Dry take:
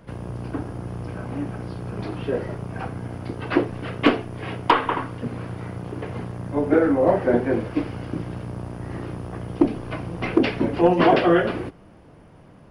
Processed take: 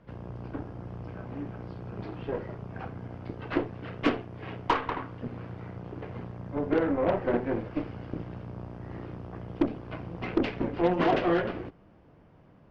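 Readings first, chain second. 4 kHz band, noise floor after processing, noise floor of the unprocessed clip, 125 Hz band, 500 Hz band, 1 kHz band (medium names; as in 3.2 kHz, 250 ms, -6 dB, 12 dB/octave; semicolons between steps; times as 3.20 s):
-9.0 dB, -57 dBFS, -48 dBFS, -8.0 dB, -8.0 dB, -8.0 dB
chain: Chebyshev shaper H 6 -18 dB, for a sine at -6.5 dBFS; distance through air 140 m; trim -8 dB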